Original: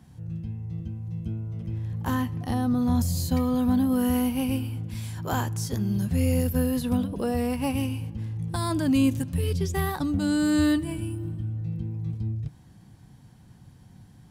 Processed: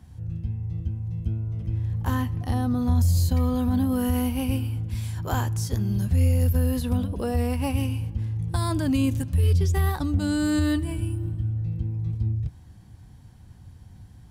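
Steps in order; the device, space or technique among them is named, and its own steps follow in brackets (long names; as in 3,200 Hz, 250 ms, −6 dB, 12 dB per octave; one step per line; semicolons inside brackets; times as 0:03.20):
car stereo with a boomy subwoofer (low shelf with overshoot 110 Hz +8 dB, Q 1.5; brickwall limiter −14 dBFS, peak gain reduction 5.5 dB)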